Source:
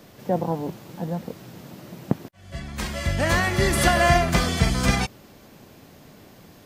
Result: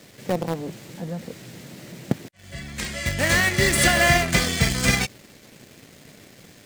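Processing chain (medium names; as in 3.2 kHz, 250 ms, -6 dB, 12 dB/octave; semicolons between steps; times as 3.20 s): graphic EQ 125/250/500/1000/2000/4000/8000 Hz +5/+3/+5/-4/+10/+5/+11 dB; in parallel at -12 dB: companded quantiser 2-bit; on the sum: trim -8.5 dB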